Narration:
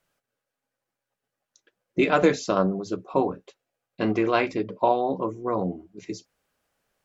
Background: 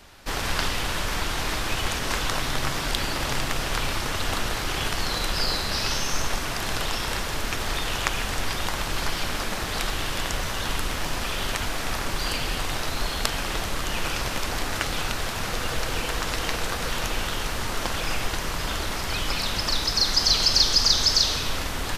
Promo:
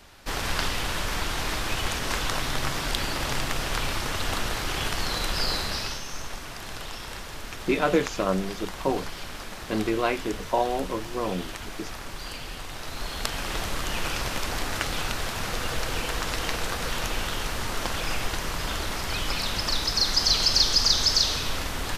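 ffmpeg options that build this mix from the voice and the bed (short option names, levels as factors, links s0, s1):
-filter_complex "[0:a]adelay=5700,volume=0.708[s0];[1:a]volume=2.11,afade=t=out:st=5.62:d=0.39:silence=0.398107,afade=t=in:st=12.73:d=0.91:silence=0.398107[s1];[s0][s1]amix=inputs=2:normalize=0"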